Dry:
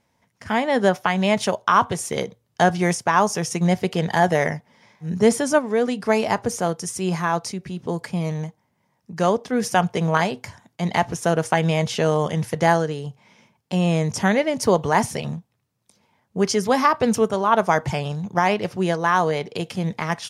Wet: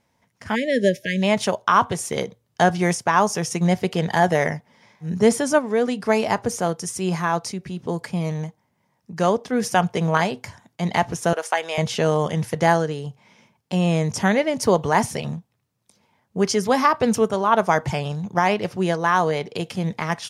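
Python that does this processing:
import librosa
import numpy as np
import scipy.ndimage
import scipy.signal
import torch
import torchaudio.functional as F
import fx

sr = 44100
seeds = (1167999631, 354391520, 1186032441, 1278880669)

y = fx.spec_erase(x, sr, start_s=0.55, length_s=0.68, low_hz=640.0, high_hz=1600.0)
y = fx.bessel_highpass(y, sr, hz=610.0, order=4, at=(11.33, 11.78))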